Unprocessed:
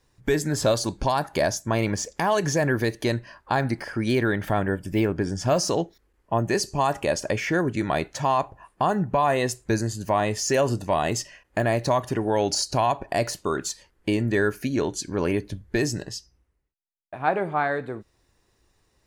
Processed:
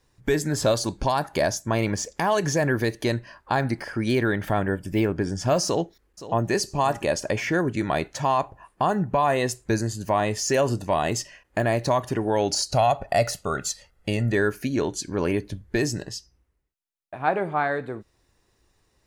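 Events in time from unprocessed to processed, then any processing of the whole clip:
5.65–6.51 echo throw 0.52 s, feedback 25%, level -14.5 dB
12.72–14.33 comb 1.5 ms

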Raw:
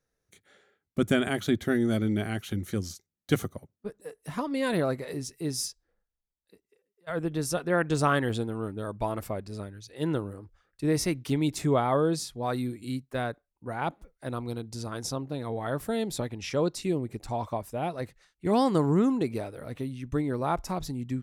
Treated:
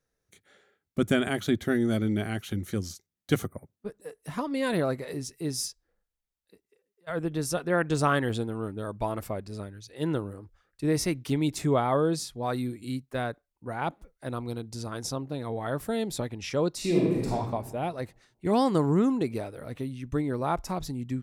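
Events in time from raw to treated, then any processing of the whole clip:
3.46–3.66 spectral gain 2400–8000 Hz -28 dB
16.76–17.32 reverb throw, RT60 1.3 s, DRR -5 dB

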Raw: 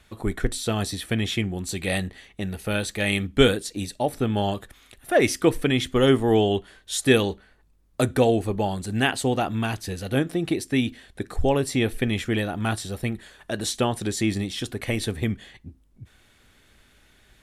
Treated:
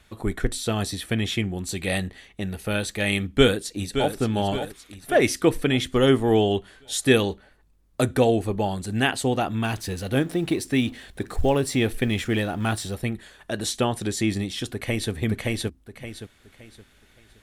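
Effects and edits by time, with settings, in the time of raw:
3.22–4.15 echo throw 0.57 s, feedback 50%, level -8.5 dB
9.64–12.95 G.711 law mismatch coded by mu
14.72–15.12 echo throw 0.57 s, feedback 30%, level -0.5 dB

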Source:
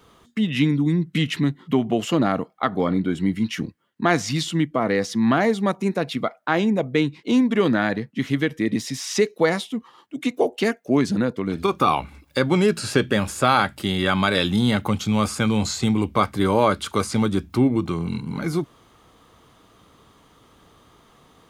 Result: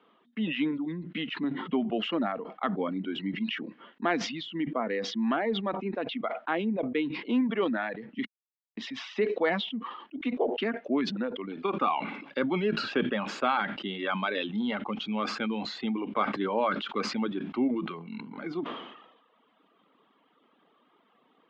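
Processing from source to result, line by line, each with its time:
5.35–6.24 air absorption 84 m
8.25–8.77 mute
whole clip: elliptic band-pass 220–3100 Hz, stop band 50 dB; reverb removal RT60 1.3 s; sustainer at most 58 dB/s; gain -7.5 dB

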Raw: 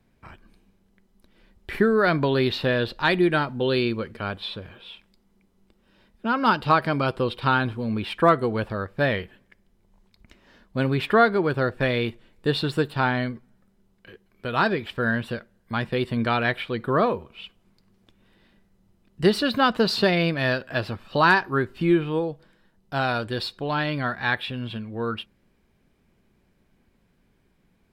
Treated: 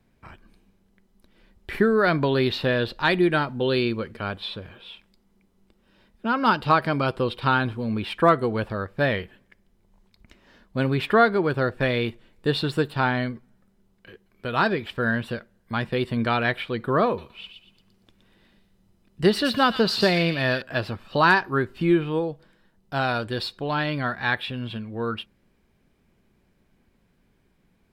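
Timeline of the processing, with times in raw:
17.06–20.62 thin delay 0.118 s, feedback 31%, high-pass 2700 Hz, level -4 dB

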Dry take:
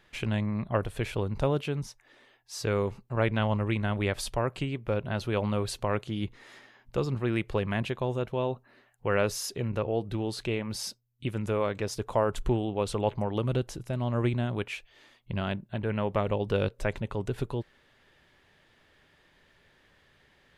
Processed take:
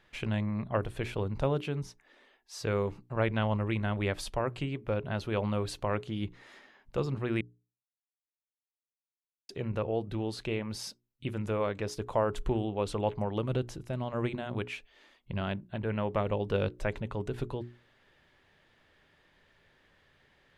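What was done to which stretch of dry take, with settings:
7.41–9.49 mute
whole clip: high shelf 6100 Hz -6 dB; notches 60/120/180/240/300/360/420 Hz; gain -2 dB

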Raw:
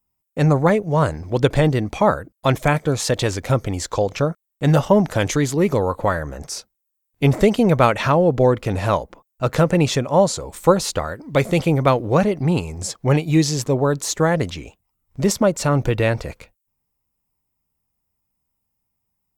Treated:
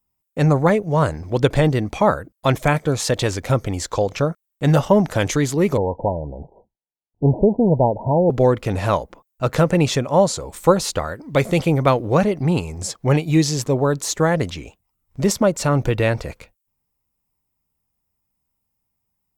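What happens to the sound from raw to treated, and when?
5.77–8.3 Chebyshev low-pass 970 Hz, order 10

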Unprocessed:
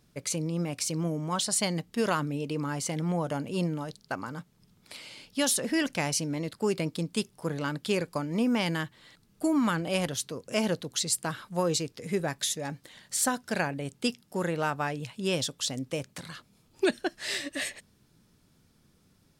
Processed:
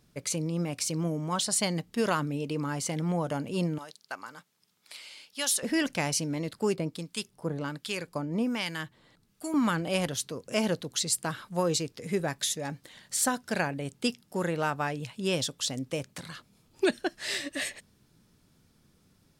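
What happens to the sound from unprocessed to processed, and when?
3.78–5.63 HPF 1300 Hz 6 dB/oct
6.75–9.54 harmonic tremolo 1.3 Hz, crossover 1100 Hz

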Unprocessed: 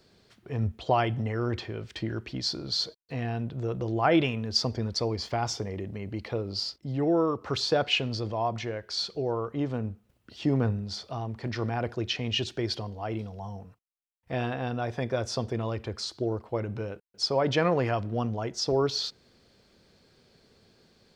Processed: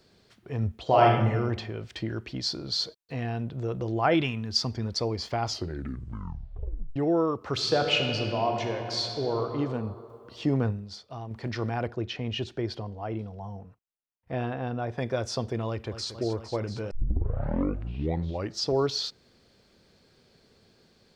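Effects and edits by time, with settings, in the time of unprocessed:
0.85–1.3 reverb throw, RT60 0.95 s, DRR -2.5 dB
4.14–4.84 bell 530 Hz -9 dB
5.39 tape stop 1.57 s
7.52–9.52 reverb throw, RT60 2.6 s, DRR 3 dB
10.57–11.31 upward expander, over -48 dBFS
11.87–14.98 high shelf 2700 Hz -11 dB
15.68–16.13 echo throw 0.23 s, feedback 85%, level -10.5 dB
16.91 tape start 1.77 s

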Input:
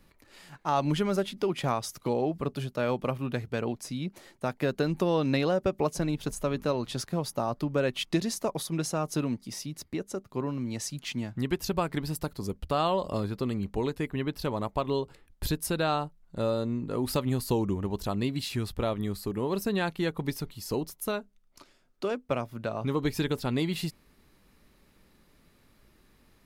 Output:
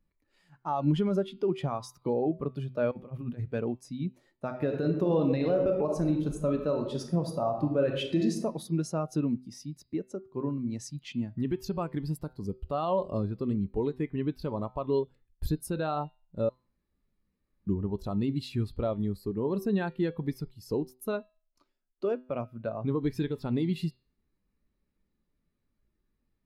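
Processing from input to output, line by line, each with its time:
2.91–3.48 negative-ratio compressor -34 dBFS, ratio -0.5
4.45–8.37 reverb throw, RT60 1.1 s, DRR 3 dB
14.99–15.72 dynamic EQ 2700 Hz, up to -4 dB, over -48 dBFS, Q 0.86
16.49–17.67 room tone
whole clip: de-hum 127.3 Hz, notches 39; limiter -19.5 dBFS; spectral expander 1.5:1; gain +4 dB

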